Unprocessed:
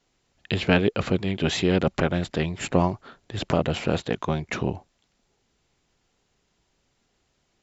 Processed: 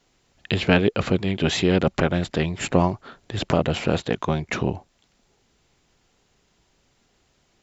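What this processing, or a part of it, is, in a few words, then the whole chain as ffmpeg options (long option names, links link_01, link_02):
parallel compression: -filter_complex "[0:a]asplit=2[link_01][link_02];[link_02]acompressor=threshold=-38dB:ratio=6,volume=-4dB[link_03];[link_01][link_03]amix=inputs=2:normalize=0,volume=1.5dB"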